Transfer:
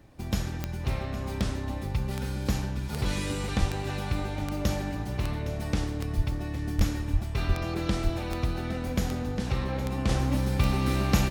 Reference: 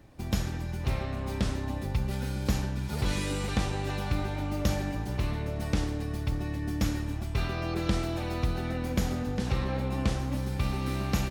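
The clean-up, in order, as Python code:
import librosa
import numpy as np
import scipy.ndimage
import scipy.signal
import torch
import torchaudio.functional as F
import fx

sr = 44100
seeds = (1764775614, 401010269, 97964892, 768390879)

y = fx.fix_declick_ar(x, sr, threshold=10.0)
y = fx.fix_deplosive(y, sr, at_s=(3.59, 6.16, 6.77, 7.12, 7.47, 8.03))
y = fx.fix_echo_inverse(y, sr, delay_ms=812, level_db=-14.5)
y = fx.gain(y, sr, db=fx.steps((0.0, 0.0), (10.09, -5.0)))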